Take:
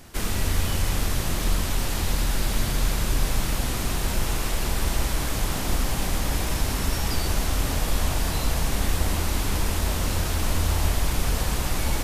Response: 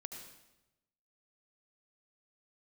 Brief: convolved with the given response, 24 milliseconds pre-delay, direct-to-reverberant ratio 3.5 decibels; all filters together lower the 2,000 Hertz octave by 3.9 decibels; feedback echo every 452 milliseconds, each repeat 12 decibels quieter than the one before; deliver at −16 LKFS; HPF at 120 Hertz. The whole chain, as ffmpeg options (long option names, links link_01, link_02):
-filter_complex "[0:a]highpass=120,equalizer=frequency=2000:width_type=o:gain=-5,aecho=1:1:452|904|1356:0.251|0.0628|0.0157,asplit=2[link_01][link_02];[1:a]atrim=start_sample=2205,adelay=24[link_03];[link_02][link_03]afir=irnorm=-1:irlink=0,volume=0dB[link_04];[link_01][link_04]amix=inputs=2:normalize=0,volume=11dB"